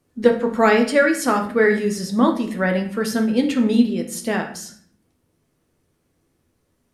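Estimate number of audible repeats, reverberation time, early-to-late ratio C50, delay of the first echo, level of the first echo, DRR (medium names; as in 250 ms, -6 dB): no echo, 0.55 s, 8.5 dB, no echo, no echo, 3.0 dB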